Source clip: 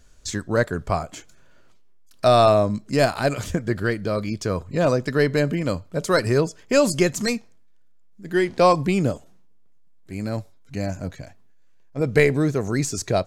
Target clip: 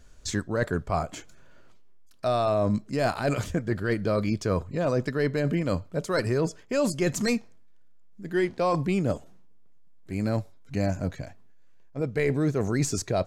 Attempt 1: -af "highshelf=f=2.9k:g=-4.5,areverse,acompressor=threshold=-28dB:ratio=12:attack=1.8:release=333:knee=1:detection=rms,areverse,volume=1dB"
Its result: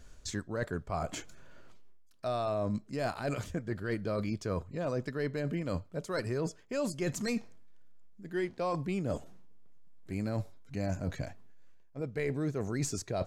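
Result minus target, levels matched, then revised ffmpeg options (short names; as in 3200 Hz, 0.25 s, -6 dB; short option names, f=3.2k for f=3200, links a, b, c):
compressor: peak gain reduction +8 dB
-af "highshelf=f=2.9k:g=-4.5,areverse,acompressor=threshold=-19dB:ratio=12:attack=1.8:release=333:knee=1:detection=rms,areverse,volume=1dB"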